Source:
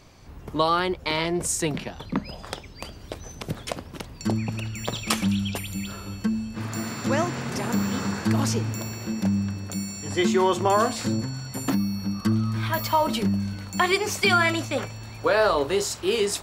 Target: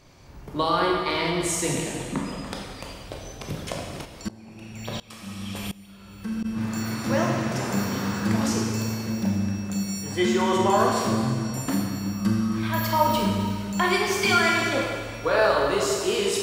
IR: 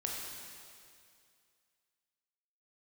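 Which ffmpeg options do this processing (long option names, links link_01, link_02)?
-filter_complex "[1:a]atrim=start_sample=2205,asetrate=52920,aresample=44100[link_01];[0:a][link_01]afir=irnorm=-1:irlink=0,asplit=3[link_02][link_03][link_04];[link_02]afade=type=out:start_time=4.04:duration=0.02[link_05];[link_03]aeval=exprs='val(0)*pow(10,-22*if(lt(mod(-1.4*n/s,1),2*abs(-1.4)/1000),1-mod(-1.4*n/s,1)/(2*abs(-1.4)/1000),(mod(-1.4*n/s,1)-2*abs(-1.4)/1000)/(1-2*abs(-1.4)/1000))/20)':channel_layout=same,afade=type=in:start_time=4.04:duration=0.02,afade=type=out:start_time=6.44:duration=0.02[link_06];[link_04]afade=type=in:start_time=6.44:duration=0.02[link_07];[link_05][link_06][link_07]amix=inputs=3:normalize=0"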